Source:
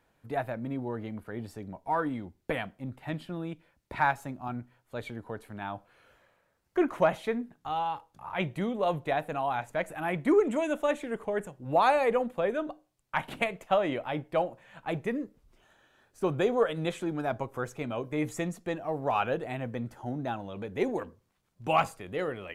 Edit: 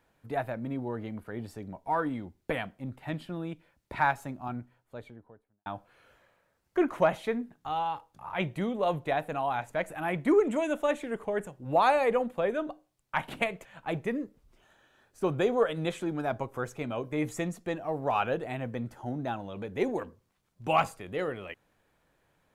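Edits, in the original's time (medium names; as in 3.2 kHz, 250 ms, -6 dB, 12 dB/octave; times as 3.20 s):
4.38–5.66 s: studio fade out
13.65–14.65 s: delete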